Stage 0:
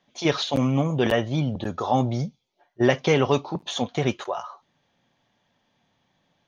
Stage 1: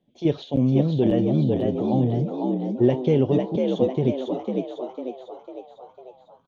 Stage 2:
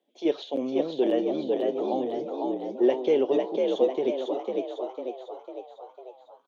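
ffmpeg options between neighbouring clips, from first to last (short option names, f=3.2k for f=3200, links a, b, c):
-filter_complex "[0:a]firequalizer=gain_entry='entry(360,0);entry(1200,-24);entry(3200,-13);entry(5000,-23)':delay=0.05:min_phase=1,asplit=2[a][b];[b]asplit=6[c][d][e][f][g][h];[c]adelay=500,afreqshift=63,volume=-4dB[i];[d]adelay=1000,afreqshift=126,volume=-10.2dB[j];[e]adelay=1500,afreqshift=189,volume=-16.4dB[k];[f]adelay=2000,afreqshift=252,volume=-22.6dB[l];[g]adelay=2500,afreqshift=315,volume=-28.8dB[m];[h]adelay=3000,afreqshift=378,volume=-35dB[n];[i][j][k][l][m][n]amix=inputs=6:normalize=0[o];[a][o]amix=inputs=2:normalize=0,volume=2.5dB"
-af "highpass=f=340:w=0.5412,highpass=f=340:w=1.3066"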